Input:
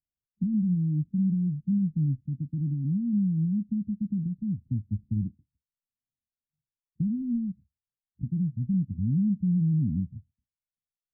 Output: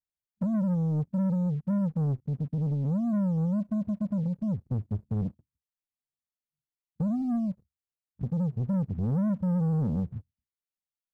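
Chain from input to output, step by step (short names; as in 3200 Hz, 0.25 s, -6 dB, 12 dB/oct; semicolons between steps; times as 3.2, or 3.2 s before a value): sample leveller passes 2; gain -3.5 dB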